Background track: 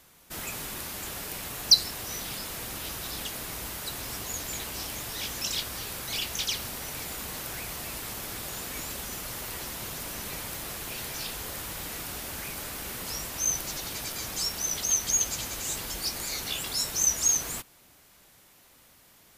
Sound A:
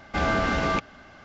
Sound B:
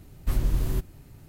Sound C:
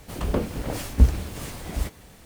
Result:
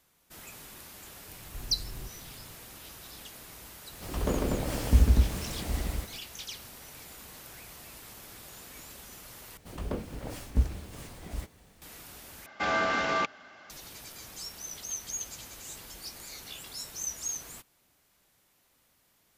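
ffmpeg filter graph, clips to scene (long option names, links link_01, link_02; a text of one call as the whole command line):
ffmpeg -i bed.wav -i cue0.wav -i cue1.wav -i cue2.wav -filter_complex "[3:a]asplit=2[link_01][link_02];[0:a]volume=-11dB[link_03];[2:a]acompressor=threshold=-33dB:ratio=6:attack=3.2:release=140:knee=1:detection=peak[link_04];[link_01]aecho=1:1:69.97|148.7|242:0.631|0.794|0.794[link_05];[1:a]highpass=frequency=580:poles=1[link_06];[link_03]asplit=3[link_07][link_08][link_09];[link_07]atrim=end=9.574[link_10];[link_02]atrim=end=2.25,asetpts=PTS-STARTPTS,volume=-9.5dB[link_11];[link_08]atrim=start=11.816:end=12.464[link_12];[link_06]atrim=end=1.24,asetpts=PTS-STARTPTS,volume=-1dB[link_13];[link_09]atrim=start=13.696[link_14];[link_04]atrim=end=1.28,asetpts=PTS-STARTPTS,volume=-4.5dB,afade=type=in:duration=0.004:curve=hsin,afade=type=out:start_time=1.276:duration=0.004:curve=hsin,adelay=1280[link_15];[link_05]atrim=end=2.25,asetpts=PTS-STARTPTS,volume=-6dB,afade=type=in:duration=0.004:curve=hsin,afade=type=out:start_time=2.246:duration=0.004:curve=hsin,adelay=173313S[link_16];[link_10][link_11]acrossfade=duration=0.004:curve1=hsin:curve2=hsin[link_17];[link_17][link_12]acrossfade=duration=0.004:curve1=hsin:curve2=hsin[link_18];[link_18][link_13]acrossfade=duration=0.004:curve1=hsin:curve2=hsin[link_19];[link_19][link_14]acrossfade=duration=0.004:curve1=hsin:curve2=hsin[link_20];[link_20][link_15][link_16]amix=inputs=3:normalize=0" out.wav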